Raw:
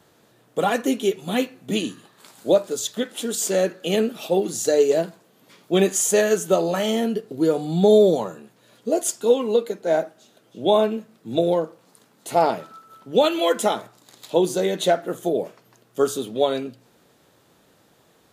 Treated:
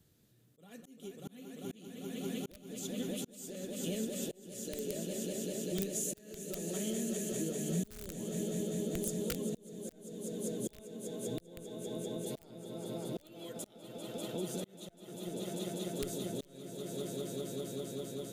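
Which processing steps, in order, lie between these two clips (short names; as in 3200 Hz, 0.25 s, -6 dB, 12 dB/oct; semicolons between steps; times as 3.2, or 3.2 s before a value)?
on a send: swelling echo 0.197 s, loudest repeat 5, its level -8 dB; on the sum: wrapped overs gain 6.5 dB; high shelf 9800 Hz +8 dB; compressor 6:1, threshold -19 dBFS, peak gain reduction 10.5 dB; passive tone stack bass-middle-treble 10-0-1; auto swell 0.58 s; gain +7.5 dB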